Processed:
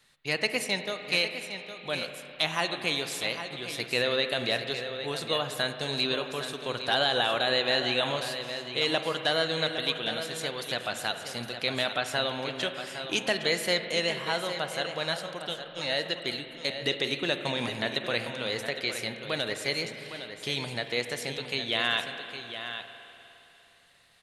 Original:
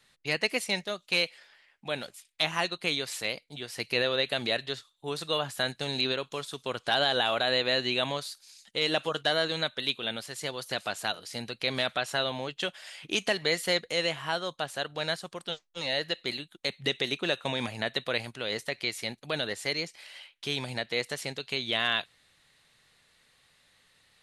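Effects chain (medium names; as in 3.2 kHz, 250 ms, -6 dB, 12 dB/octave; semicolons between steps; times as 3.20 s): treble shelf 11 kHz +3.5 dB; delay 811 ms -10 dB; spring tank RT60 3.2 s, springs 41/50 ms, chirp 55 ms, DRR 7.5 dB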